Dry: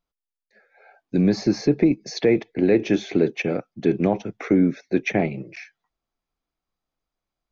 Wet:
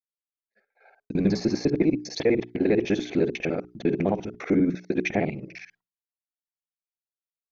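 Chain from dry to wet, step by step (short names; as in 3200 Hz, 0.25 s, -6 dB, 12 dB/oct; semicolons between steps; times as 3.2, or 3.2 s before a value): local time reversal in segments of 50 ms; expander -50 dBFS; notches 60/120/180/240/300/360/420 Hz; gain -2.5 dB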